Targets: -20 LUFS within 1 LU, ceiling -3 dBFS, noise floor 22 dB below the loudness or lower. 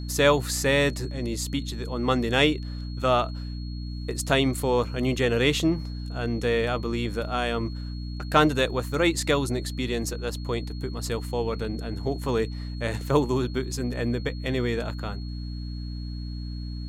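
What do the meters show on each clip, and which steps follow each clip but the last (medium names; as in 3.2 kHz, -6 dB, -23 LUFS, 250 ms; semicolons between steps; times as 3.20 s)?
hum 60 Hz; highest harmonic 300 Hz; hum level -31 dBFS; steady tone 4.3 kHz; tone level -47 dBFS; loudness -26.5 LUFS; peak level -4.5 dBFS; loudness target -20.0 LUFS
-> hum notches 60/120/180/240/300 Hz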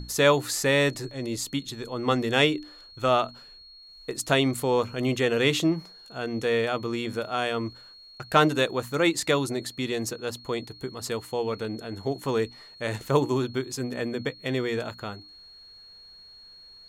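hum not found; steady tone 4.3 kHz; tone level -47 dBFS
-> band-stop 4.3 kHz, Q 30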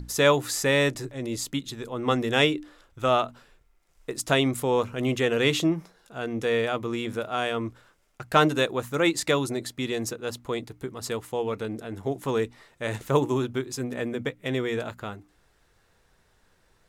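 steady tone not found; loudness -26.5 LUFS; peak level -4.5 dBFS; loudness target -20.0 LUFS
-> trim +6.5 dB; peak limiter -3 dBFS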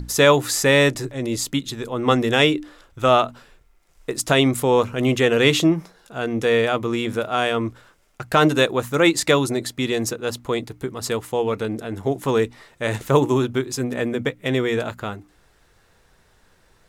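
loudness -20.5 LUFS; peak level -3.0 dBFS; noise floor -59 dBFS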